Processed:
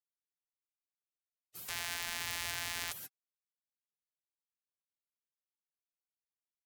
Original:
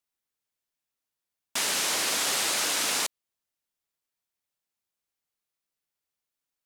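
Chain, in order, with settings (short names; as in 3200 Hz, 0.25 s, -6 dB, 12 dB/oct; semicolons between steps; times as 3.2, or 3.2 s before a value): 1.69–2.92 sample sorter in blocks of 256 samples; spectral gate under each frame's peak -15 dB weak; gain -4.5 dB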